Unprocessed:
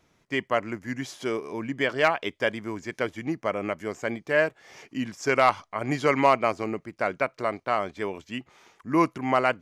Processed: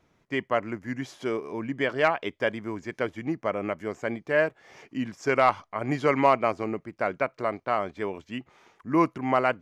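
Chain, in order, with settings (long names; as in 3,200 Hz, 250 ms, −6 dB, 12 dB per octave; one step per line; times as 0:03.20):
high-shelf EQ 3,300 Hz −8.5 dB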